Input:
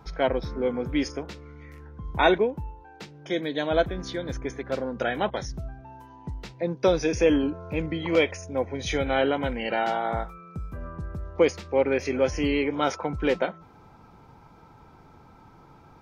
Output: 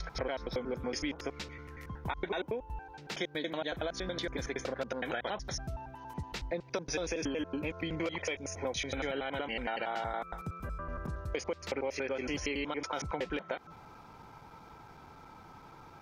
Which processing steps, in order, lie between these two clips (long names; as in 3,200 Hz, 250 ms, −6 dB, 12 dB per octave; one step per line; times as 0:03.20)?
slices reordered back to front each 93 ms, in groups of 2
tilt shelving filter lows −4 dB, about 640 Hz
brickwall limiter −16.5 dBFS, peak gain reduction 11.5 dB
downward compressor, threshold −32 dBFS, peak gain reduction 11 dB